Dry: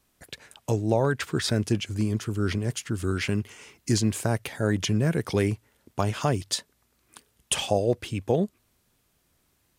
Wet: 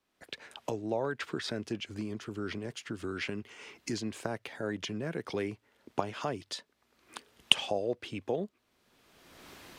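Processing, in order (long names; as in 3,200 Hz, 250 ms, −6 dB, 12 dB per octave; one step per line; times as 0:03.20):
camcorder AGC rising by 28 dB per second
three-way crossover with the lows and the highs turned down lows −13 dB, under 210 Hz, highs −13 dB, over 5,200 Hz
level −8 dB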